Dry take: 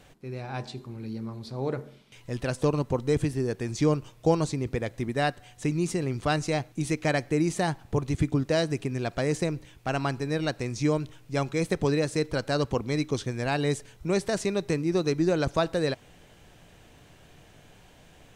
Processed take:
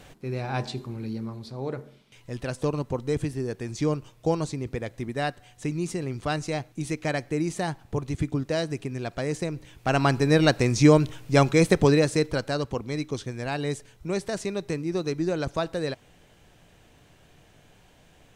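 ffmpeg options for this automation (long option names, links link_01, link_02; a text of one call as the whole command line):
ffmpeg -i in.wav -af "volume=16.5dB,afade=type=out:start_time=0.73:duration=0.85:silence=0.421697,afade=type=in:start_time=9.51:duration=0.81:silence=0.281838,afade=type=out:start_time=11.43:duration=1.19:silence=0.266073" out.wav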